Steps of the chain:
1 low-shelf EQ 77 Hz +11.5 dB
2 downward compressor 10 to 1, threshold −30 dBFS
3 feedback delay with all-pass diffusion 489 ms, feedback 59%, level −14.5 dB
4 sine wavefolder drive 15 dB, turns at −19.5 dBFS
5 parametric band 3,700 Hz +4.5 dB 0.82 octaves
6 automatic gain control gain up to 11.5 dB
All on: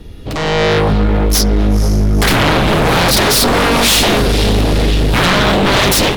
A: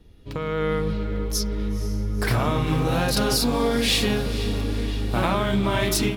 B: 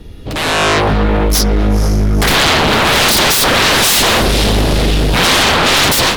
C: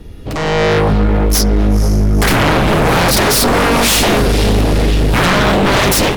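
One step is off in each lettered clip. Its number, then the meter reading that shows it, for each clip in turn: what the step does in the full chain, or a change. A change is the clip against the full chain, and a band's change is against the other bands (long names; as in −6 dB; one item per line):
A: 4, change in crest factor +7.5 dB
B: 2, average gain reduction 3.0 dB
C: 5, 4 kHz band −3.0 dB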